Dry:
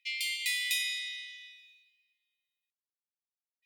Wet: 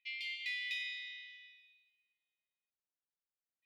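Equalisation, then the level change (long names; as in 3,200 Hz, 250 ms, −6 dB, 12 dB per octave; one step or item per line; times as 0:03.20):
high-frequency loss of the air 270 metres
−3.0 dB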